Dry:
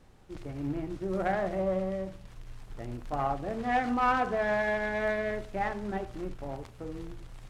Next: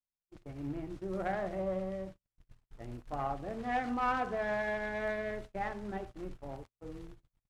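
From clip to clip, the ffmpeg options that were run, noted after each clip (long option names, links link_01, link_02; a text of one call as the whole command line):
ffmpeg -i in.wav -af "agate=range=-44dB:threshold=-39dB:ratio=16:detection=peak,volume=-5.5dB" out.wav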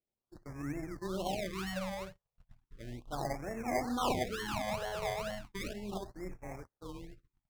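ffmpeg -i in.wav -af "acrusher=samples=25:mix=1:aa=0.000001:lfo=1:lforange=15:lforate=2.2,highshelf=frequency=7300:gain=-8,afftfilt=real='re*(1-between(b*sr/1024,260*pow(3800/260,0.5+0.5*sin(2*PI*0.35*pts/sr))/1.41,260*pow(3800/260,0.5+0.5*sin(2*PI*0.35*pts/sr))*1.41))':imag='im*(1-between(b*sr/1024,260*pow(3800/260,0.5+0.5*sin(2*PI*0.35*pts/sr))/1.41,260*pow(3800/260,0.5+0.5*sin(2*PI*0.35*pts/sr))*1.41))':win_size=1024:overlap=0.75" out.wav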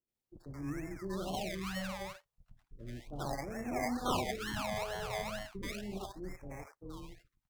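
ffmpeg -i in.wav -filter_complex "[0:a]acrossover=split=600[link_01][link_02];[link_02]adelay=80[link_03];[link_01][link_03]amix=inputs=2:normalize=0" out.wav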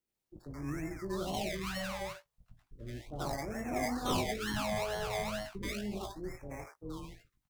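ffmpeg -i in.wav -filter_complex "[0:a]acrossover=split=460|2300[link_01][link_02][link_03];[link_02]asoftclip=type=tanh:threshold=-36dB[link_04];[link_01][link_04][link_03]amix=inputs=3:normalize=0,asplit=2[link_05][link_06];[link_06]adelay=19,volume=-6.5dB[link_07];[link_05][link_07]amix=inputs=2:normalize=0,volume=2dB" out.wav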